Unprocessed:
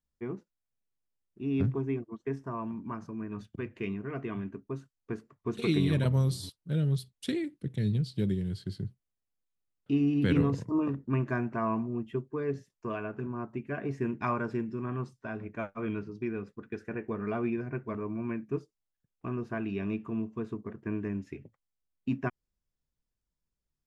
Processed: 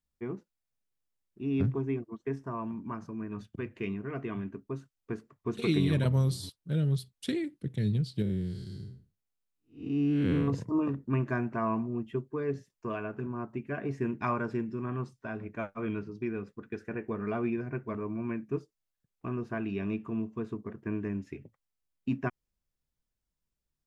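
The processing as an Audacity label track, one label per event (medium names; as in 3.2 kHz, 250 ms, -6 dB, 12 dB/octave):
8.220000	10.480000	spectral blur width 211 ms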